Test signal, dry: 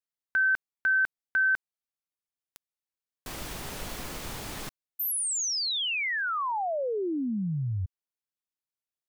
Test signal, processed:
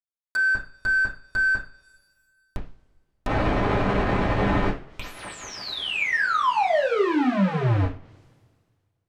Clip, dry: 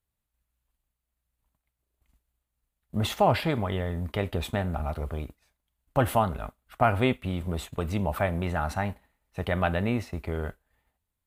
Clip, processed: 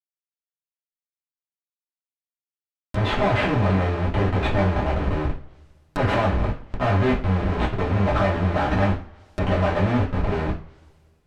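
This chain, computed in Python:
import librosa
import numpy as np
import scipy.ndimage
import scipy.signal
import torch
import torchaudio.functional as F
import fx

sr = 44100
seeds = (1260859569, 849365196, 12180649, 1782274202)

y = fx.schmitt(x, sr, flips_db=-36.0)
y = fx.rev_double_slope(y, sr, seeds[0], early_s=0.33, late_s=1.9, knee_db=-27, drr_db=-6.0)
y = fx.env_lowpass_down(y, sr, base_hz=2200.0, full_db=-29.0)
y = F.gain(torch.from_numpy(y), 4.0).numpy()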